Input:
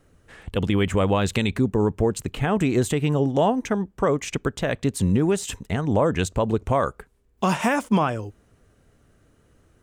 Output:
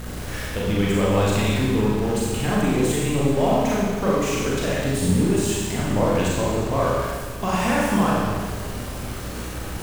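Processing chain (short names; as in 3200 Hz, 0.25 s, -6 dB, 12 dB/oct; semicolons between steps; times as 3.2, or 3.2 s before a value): zero-crossing step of -25.5 dBFS; Schroeder reverb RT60 1.6 s, combs from 30 ms, DRR -6 dB; hum 60 Hz, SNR 13 dB; gain -7.5 dB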